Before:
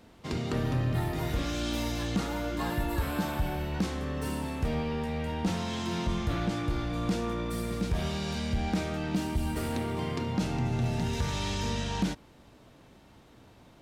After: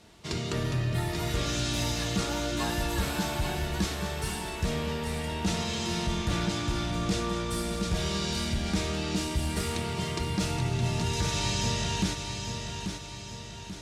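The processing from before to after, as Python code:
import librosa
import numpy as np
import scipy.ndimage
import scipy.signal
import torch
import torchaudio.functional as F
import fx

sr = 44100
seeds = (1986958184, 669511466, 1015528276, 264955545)

y = scipy.signal.sosfilt(scipy.signal.butter(2, 9400.0, 'lowpass', fs=sr, output='sos'), x)
y = fx.high_shelf(y, sr, hz=2900.0, db=12.0)
y = fx.notch_comb(y, sr, f0_hz=260.0)
y = fx.echo_feedback(y, sr, ms=837, feedback_pct=49, wet_db=-6.5)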